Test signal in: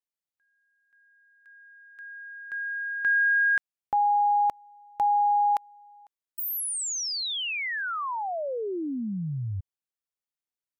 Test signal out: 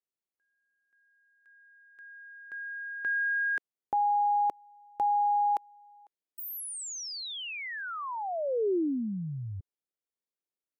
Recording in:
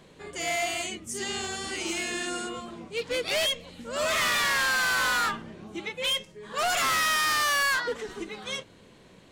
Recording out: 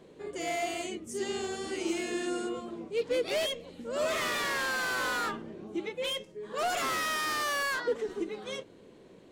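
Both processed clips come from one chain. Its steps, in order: bell 380 Hz +12 dB 1.7 oct; gain -8 dB

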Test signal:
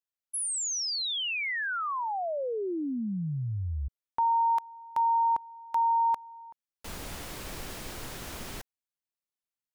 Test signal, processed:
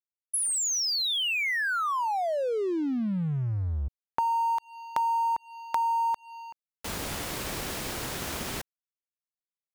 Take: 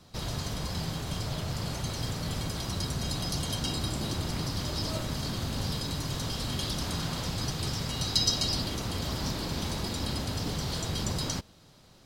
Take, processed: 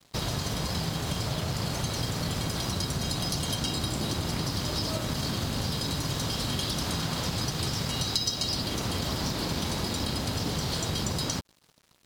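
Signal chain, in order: HPF 73 Hz 6 dB/oct; compressor 4:1, threshold -35 dBFS; crossover distortion -53.5 dBFS; gain +9 dB

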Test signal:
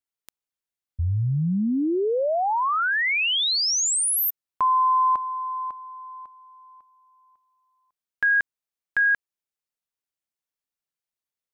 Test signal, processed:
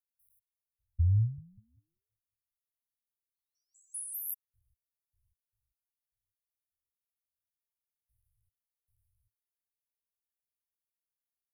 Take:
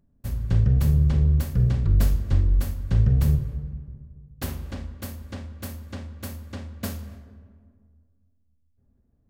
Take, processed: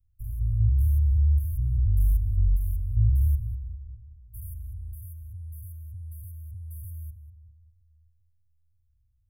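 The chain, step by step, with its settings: stepped spectrum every 0.2 s; Chebyshev band-stop 110–9700 Hz, order 5

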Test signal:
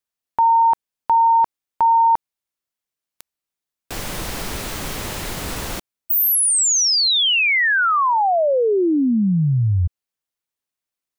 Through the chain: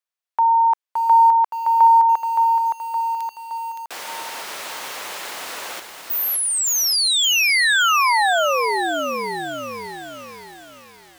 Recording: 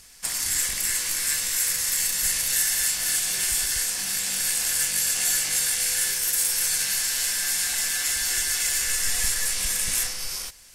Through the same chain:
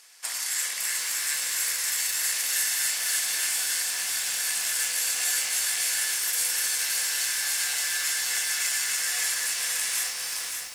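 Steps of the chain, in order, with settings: HPF 670 Hz 12 dB/oct; high shelf 5000 Hz -5.5 dB; lo-fi delay 0.568 s, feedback 55%, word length 7-bit, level -4.5 dB

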